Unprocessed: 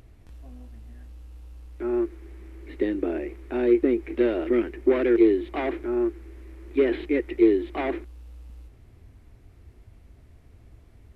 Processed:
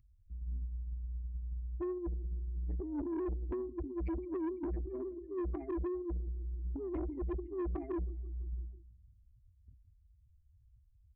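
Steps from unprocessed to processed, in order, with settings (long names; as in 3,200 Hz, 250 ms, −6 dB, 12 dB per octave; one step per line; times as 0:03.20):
expanding power law on the bin magnitudes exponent 3.7
dynamic equaliser 240 Hz, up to −5 dB, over −42 dBFS, Q 3.9
phaser with its sweep stopped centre 2,300 Hz, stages 8
noise gate −43 dBFS, range −25 dB
compressor whose output falls as the input rises −39 dBFS, ratio −0.5
flat-topped bell 700 Hz −15 dB 1.1 octaves
repeating echo 167 ms, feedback 59%, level −21.5 dB
soft clipping −38.5 dBFS, distortion −12 dB
level that may fall only so fast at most 99 dB per second
level +6 dB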